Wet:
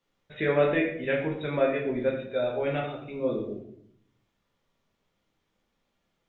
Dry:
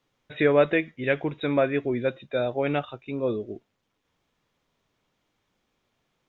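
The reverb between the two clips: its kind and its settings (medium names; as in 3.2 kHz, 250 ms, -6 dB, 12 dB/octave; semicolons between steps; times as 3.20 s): simulated room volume 130 m³, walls mixed, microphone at 1.2 m; trim -7 dB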